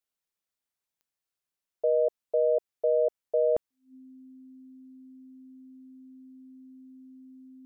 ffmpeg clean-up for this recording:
-af "adeclick=t=4,bandreject=f=260:w=30"

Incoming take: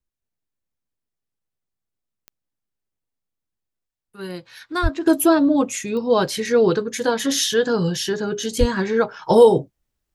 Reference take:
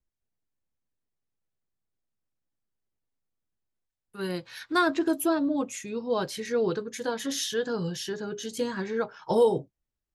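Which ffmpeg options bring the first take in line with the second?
-filter_complex "[0:a]adeclick=t=4,asplit=3[s0][s1][s2];[s0]afade=t=out:st=4.82:d=0.02[s3];[s1]highpass=f=140:w=0.5412,highpass=f=140:w=1.3066,afade=t=in:st=4.82:d=0.02,afade=t=out:st=4.94:d=0.02[s4];[s2]afade=t=in:st=4.94:d=0.02[s5];[s3][s4][s5]amix=inputs=3:normalize=0,asplit=3[s6][s7][s8];[s6]afade=t=out:st=8.59:d=0.02[s9];[s7]highpass=f=140:w=0.5412,highpass=f=140:w=1.3066,afade=t=in:st=8.59:d=0.02,afade=t=out:st=8.71:d=0.02[s10];[s8]afade=t=in:st=8.71:d=0.02[s11];[s9][s10][s11]amix=inputs=3:normalize=0,asetnsamples=n=441:p=0,asendcmd='5.06 volume volume -10dB',volume=1"

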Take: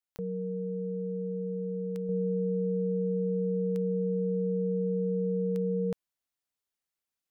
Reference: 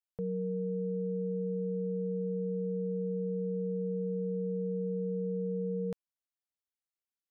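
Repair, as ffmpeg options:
-af "adeclick=t=4,asetnsamples=n=441:p=0,asendcmd='2.09 volume volume -4.5dB',volume=1"

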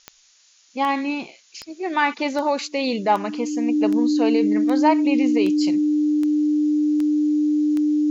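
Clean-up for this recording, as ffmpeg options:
-af "adeclick=t=4,bandreject=f=300:w=30,afftdn=nr=11:nf=-56"

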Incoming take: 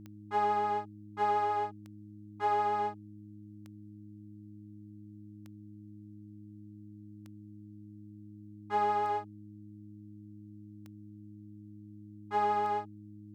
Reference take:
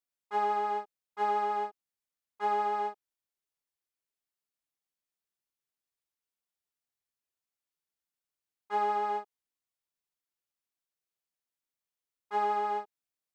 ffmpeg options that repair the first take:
-af "adeclick=t=4,bandreject=f=104.3:t=h:w=4,bandreject=f=208.6:t=h:w=4,bandreject=f=312.9:t=h:w=4"

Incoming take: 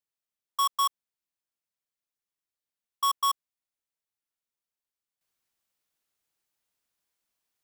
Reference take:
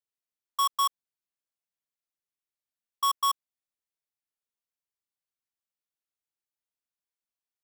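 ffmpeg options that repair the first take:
-af "asetnsamples=n=441:p=0,asendcmd='5.21 volume volume -10.5dB',volume=1"

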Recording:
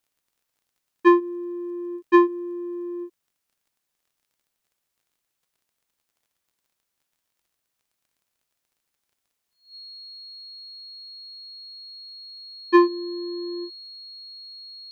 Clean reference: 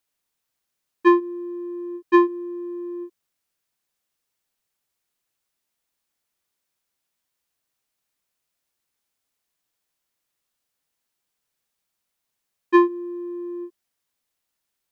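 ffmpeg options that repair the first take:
-af "adeclick=t=4,bandreject=f=4300:w=30"

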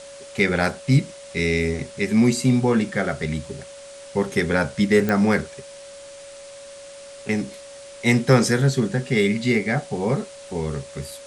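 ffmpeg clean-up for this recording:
-af "adeclick=t=4,bandreject=f=560:w=30,afftdn=nr=25:nf=-41"

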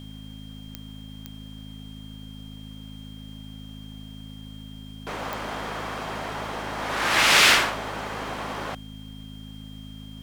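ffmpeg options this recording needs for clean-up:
-af "adeclick=t=4,bandreject=f=52.8:t=h:w=4,bandreject=f=105.6:t=h:w=4,bandreject=f=158.4:t=h:w=4,bandreject=f=211.2:t=h:w=4,bandreject=f=264:t=h:w=4,bandreject=f=3200:w=30,agate=range=0.0891:threshold=0.0224"

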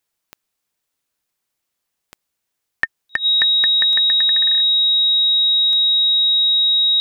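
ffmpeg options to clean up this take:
-af "adeclick=t=4,bandreject=f=3800:w=30"

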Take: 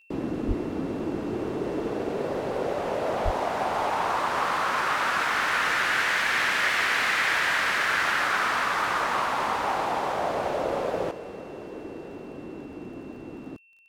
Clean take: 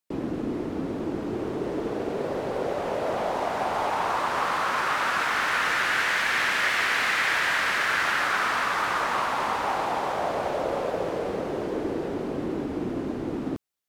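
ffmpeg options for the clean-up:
-filter_complex "[0:a]adeclick=t=4,bandreject=f=2700:w=30,asplit=3[s0][s1][s2];[s0]afade=t=out:st=0.47:d=0.02[s3];[s1]highpass=f=140:w=0.5412,highpass=f=140:w=1.3066,afade=t=in:st=0.47:d=0.02,afade=t=out:st=0.59:d=0.02[s4];[s2]afade=t=in:st=0.59:d=0.02[s5];[s3][s4][s5]amix=inputs=3:normalize=0,asplit=3[s6][s7][s8];[s6]afade=t=out:st=3.24:d=0.02[s9];[s7]highpass=f=140:w=0.5412,highpass=f=140:w=1.3066,afade=t=in:st=3.24:d=0.02,afade=t=out:st=3.36:d=0.02[s10];[s8]afade=t=in:st=3.36:d=0.02[s11];[s9][s10][s11]amix=inputs=3:normalize=0,asetnsamples=n=441:p=0,asendcmd='11.11 volume volume 9.5dB',volume=1"

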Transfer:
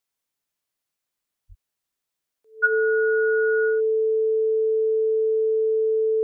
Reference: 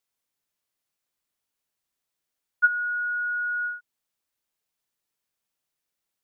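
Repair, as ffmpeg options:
-filter_complex "[0:a]bandreject=f=440:w=30,asplit=3[s0][s1][s2];[s0]afade=t=out:st=1.48:d=0.02[s3];[s1]highpass=f=140:w=0.5412,highpass=f=140:w=1.3066,afade=t=in:st=1.48:d=0.02,afade=t=out:st=1.6:d=0.02[s4];[s2]afade=t=in:st=1.6:d=0.02[s5];[s3][s4][s5]amix=inputs=3:normalize=0,asetnsamples=n=441:p=0,asendcmd='3.77 volume volume -3dB',volume=1"

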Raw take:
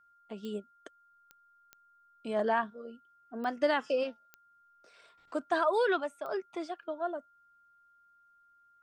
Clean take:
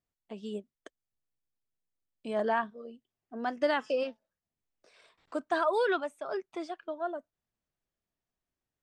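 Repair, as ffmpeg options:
-af "adeclick=t=4,bandreject=f=1400:w=30"

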